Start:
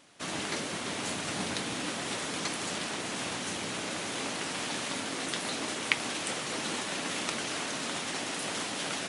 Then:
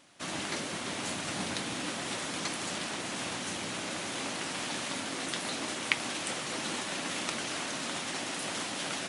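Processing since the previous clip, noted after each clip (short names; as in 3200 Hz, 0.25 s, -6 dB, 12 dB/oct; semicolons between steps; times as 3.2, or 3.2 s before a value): notch 440 Hz, Q 12; gain -1 dB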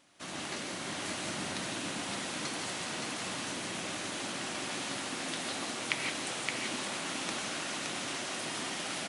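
echo 0.569 s -3.5 dB; reverb, pre-delay 3 ms, DRR 2 dB; gain -5 dB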